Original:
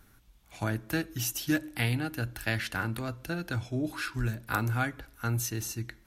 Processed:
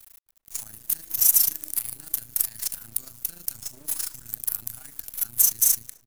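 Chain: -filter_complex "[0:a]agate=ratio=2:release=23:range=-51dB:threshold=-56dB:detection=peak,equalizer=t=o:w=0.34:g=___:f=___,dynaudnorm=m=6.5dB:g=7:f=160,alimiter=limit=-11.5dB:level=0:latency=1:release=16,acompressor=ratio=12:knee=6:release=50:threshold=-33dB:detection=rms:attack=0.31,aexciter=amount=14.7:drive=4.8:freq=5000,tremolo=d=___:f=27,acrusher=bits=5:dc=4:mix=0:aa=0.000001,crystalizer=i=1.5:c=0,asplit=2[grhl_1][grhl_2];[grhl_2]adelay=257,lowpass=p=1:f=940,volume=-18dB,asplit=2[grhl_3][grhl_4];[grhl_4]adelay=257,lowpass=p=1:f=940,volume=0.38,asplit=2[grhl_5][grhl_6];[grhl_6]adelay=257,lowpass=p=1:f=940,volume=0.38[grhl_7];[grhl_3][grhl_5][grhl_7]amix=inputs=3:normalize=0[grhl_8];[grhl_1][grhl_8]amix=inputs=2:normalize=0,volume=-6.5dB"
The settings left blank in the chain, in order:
-12.5, 420, 0.71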